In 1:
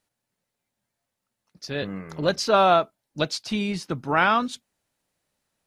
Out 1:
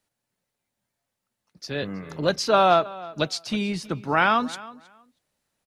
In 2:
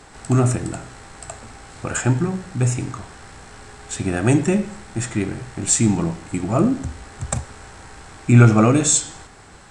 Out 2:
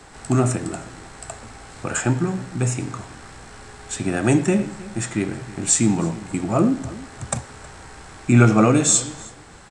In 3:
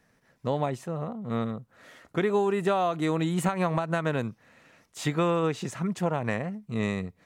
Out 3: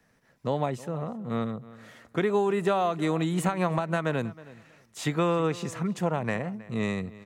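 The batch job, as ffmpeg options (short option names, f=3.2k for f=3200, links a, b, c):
-filter_complex "[0:a]asplit=2[a][b];[b]adelay=318,lowpass=f=4.3k:p=1,volume=-19dB,asplit=2[c][d];[d]adelay=318,lowpass=f=4.3k:p=1,volume=0.18[e];[a][c][e]amix=inputs=3:normalize=0,acrossover=split=110|1300|5000[f][g][h][i];[f]acompressor=threshold=-42dB:ratio=6[j];[j][g][h][i]amix=inputs=4:normalize=0"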